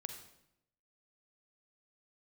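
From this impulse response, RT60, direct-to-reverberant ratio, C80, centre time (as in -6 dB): 0.80 s, 5.5 dB, 9.5 dB, 20 ms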